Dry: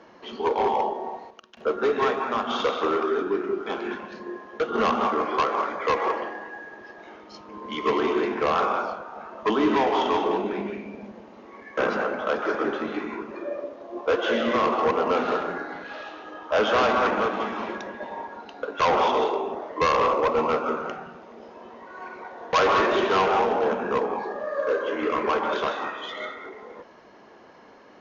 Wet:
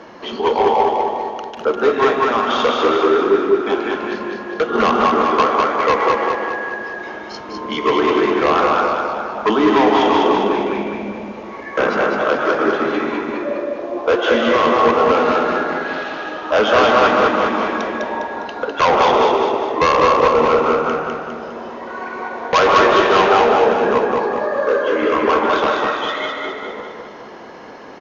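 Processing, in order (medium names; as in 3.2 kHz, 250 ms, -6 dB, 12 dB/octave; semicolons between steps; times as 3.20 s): in parallel at +0.5 dB: compression, threshold -37 dBFS, peak gain reduction 17.5 dB; on the sum: feedback delay 203 ms, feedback 49%, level -3.5 dB; trim +5.5 dB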